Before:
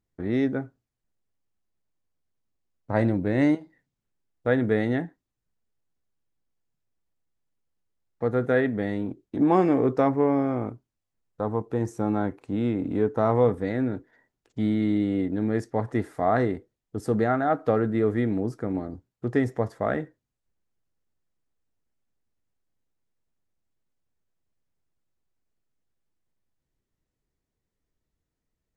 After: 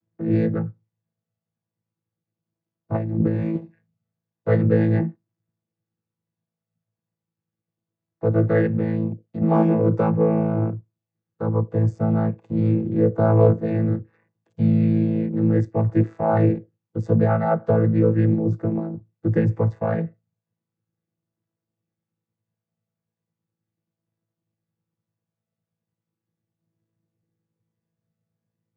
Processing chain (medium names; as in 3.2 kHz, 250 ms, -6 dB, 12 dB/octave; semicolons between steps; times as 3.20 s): vocoder on a held chord bare fifth, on A2; 2.95–3.57 s: compressor with a negative ratio -29 dBFS, ratio -1; trim +6 dB